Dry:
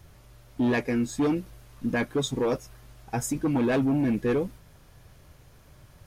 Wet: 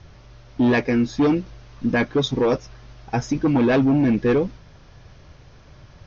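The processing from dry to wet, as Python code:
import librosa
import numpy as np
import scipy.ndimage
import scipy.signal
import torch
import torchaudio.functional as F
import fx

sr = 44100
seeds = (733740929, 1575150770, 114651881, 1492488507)

y = scipy.signal.sosfilt(scipy.signal.butter(16, 6200.0, 'lowpass', fs=sr, output='sos'), x)
y = F.gain(torch.from_numpy(y), 6.5).numpy()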